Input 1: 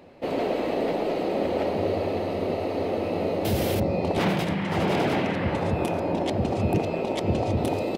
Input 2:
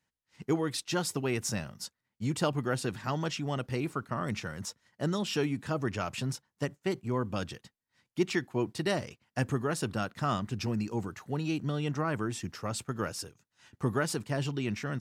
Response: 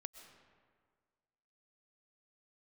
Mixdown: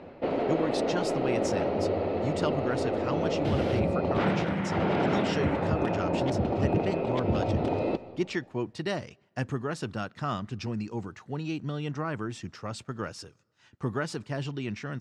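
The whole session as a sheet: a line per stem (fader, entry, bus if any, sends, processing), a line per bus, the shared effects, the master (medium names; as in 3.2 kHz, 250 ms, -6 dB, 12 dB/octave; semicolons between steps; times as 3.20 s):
+2.5 dB, 0.00 s, send -6.5 dB, low-pass 2.3 kHz 6 dB/octave; peaking EQ 1.4 kHz +5.5 dB 0.22 oct; auto duck -10 dB, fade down 0.30 s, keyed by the second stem
-1.5 dB, 0.00 s, send -21 dB, none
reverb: on, RT60 1.8 s, pre-delay 85 ms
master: low-pass 5.8 kHz 12 dB/octave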